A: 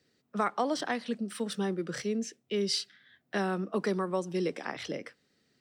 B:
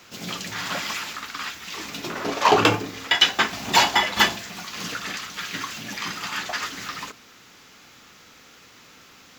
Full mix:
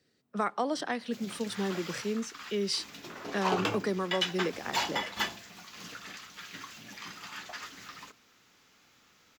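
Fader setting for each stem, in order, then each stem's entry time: −1.0, −13.5 decibels; 0.00, 1.00 seconds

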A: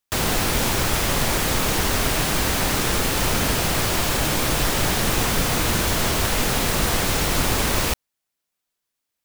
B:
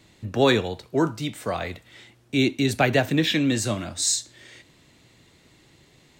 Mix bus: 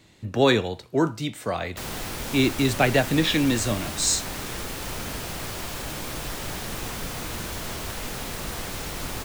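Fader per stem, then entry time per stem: −11.5, 0.0 decibels; 1.65, 0.00 seconds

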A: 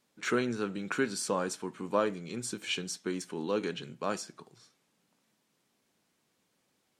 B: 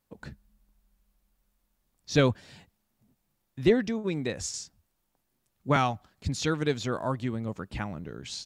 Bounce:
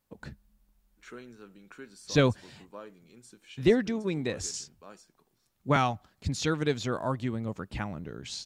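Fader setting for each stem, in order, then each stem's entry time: −16.5, −0.5 decibels; 0.80, 0.00 seconds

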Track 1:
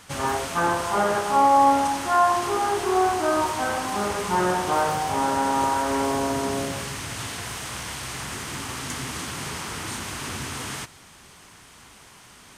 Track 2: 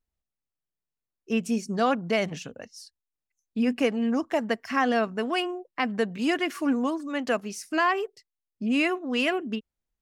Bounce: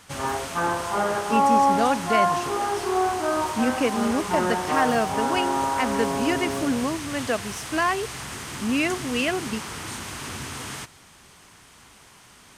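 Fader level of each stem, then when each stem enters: −2.0, +0.5 decibels; 0.00, 0.00 seconds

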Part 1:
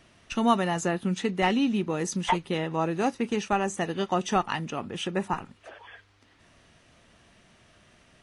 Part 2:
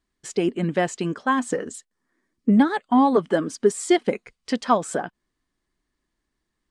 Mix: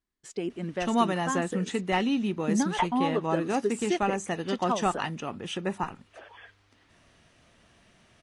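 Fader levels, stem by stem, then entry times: −2.0, −10.0 decibels; 0.50, 0.00 seconds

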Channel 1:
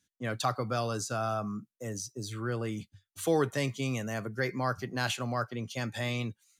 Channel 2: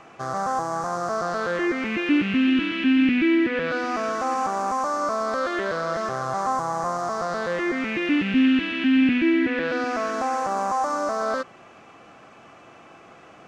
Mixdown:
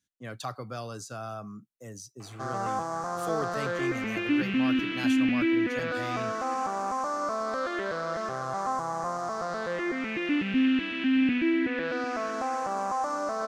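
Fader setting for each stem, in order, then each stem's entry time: −6.0, −5.5 decibels; 0.00, 2.20 seconds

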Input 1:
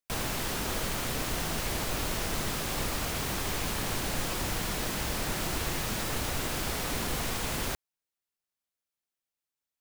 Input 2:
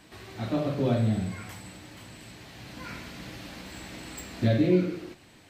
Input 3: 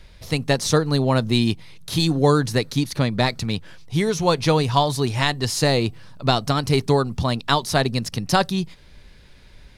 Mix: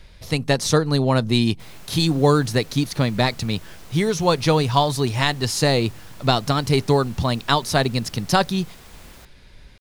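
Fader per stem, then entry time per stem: −14.0 dB, muted, +0.5 dB; 1.50 s, muted, 0.00 s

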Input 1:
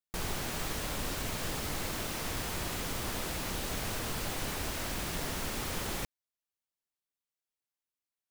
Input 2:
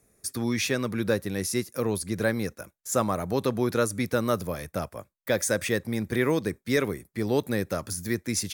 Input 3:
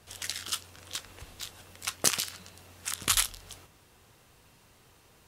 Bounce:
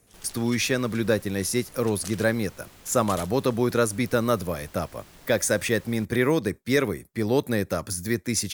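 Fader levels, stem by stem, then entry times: −15.0, +2.5, −13.5 decibels; 0.00, 0.00, 0.00 seconds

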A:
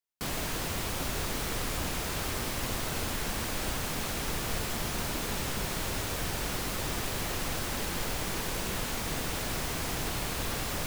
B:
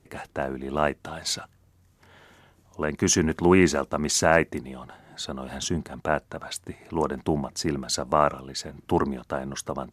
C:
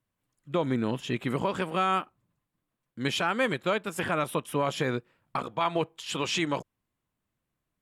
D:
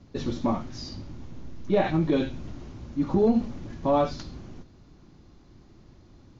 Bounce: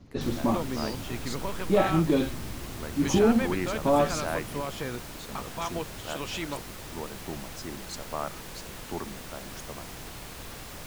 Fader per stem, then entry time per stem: −8.5, −13.0, −6.5, 0.0 decibels; 0.00, 0.00, 0.00, 0.00 seconds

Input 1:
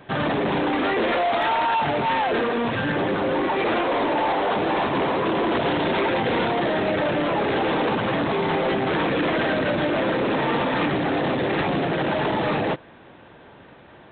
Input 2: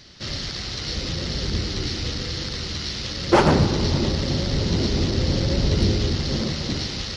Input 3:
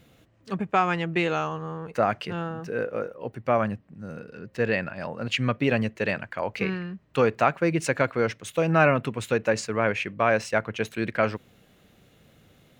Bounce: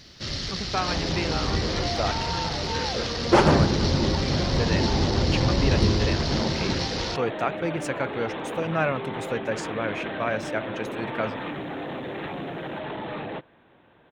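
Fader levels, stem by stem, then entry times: −10.5, −1.5, −5.5 decibels; 0.65, 0.00, 0.00 seconds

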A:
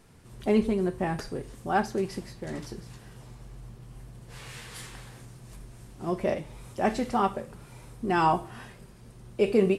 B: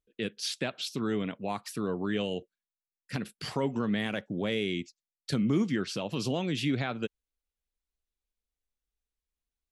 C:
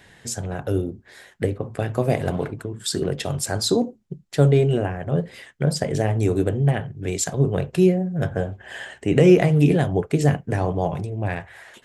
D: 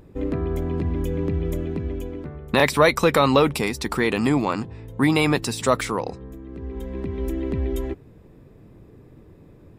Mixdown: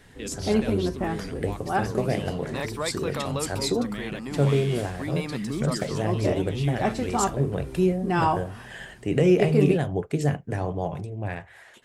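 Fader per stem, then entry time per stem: 0.0, −4.5, −5.5, −14.5 decibels; 0.00, 0.00, 0.00, 0.00 seconds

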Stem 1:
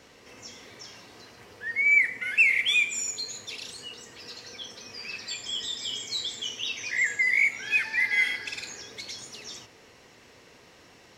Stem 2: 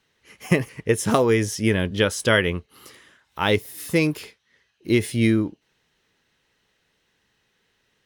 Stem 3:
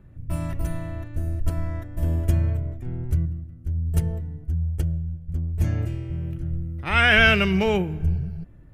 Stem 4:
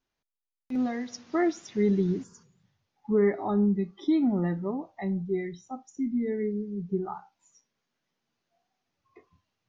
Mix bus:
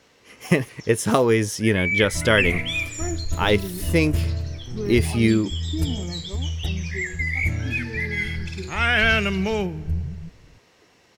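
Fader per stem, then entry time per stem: −3.5, +0.5, −2.5, −7.0 decibels; 0.00, 0.00, 1.85, 1.65 seconds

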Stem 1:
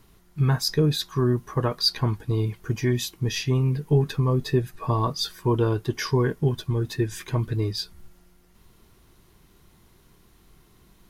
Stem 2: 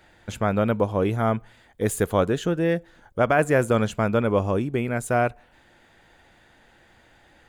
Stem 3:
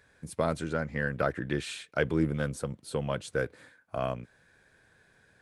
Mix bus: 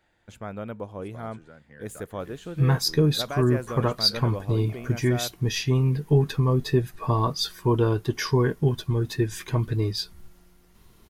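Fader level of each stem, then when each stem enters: +0.5, −13.0, −18.5 decibels; 2.20, 0.00, 0.75 seconds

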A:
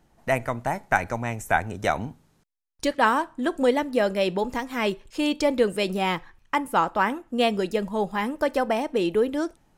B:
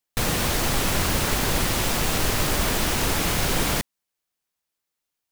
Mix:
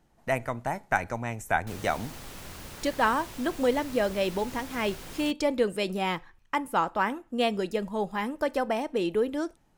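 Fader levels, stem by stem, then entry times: −4.0, −20.0 decibels; 0.00, 1.50 seconds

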